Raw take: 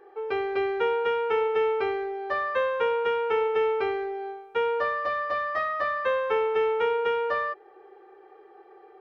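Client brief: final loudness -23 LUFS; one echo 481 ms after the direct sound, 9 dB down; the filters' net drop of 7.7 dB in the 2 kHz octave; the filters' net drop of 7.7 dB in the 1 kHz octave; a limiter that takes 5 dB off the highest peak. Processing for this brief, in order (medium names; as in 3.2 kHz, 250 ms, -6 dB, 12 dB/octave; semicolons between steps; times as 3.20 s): peaking EQ 1 kHz -7.5 dB; peaking EQ 2 kHz -7 dB; peak limiter -23 dBFS; delay 481 ms -9 dB; trim +7.5 dB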